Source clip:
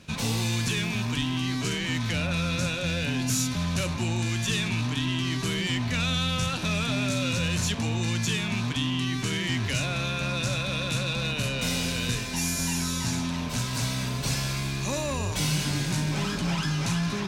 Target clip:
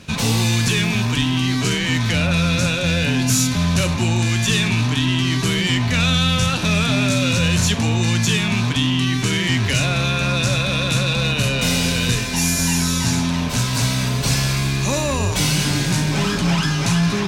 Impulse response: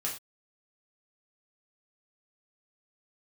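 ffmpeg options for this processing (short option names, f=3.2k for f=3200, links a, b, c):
-filter_complex "[0:a]acontrast=90,asplit=2[a][b];[1:a]atrim=start_sample=2205[c];[b][c]afir=irnorm=-1:irlink=0,volume=-13dB[d];[a][d]amix=inputs=2:normalize=0"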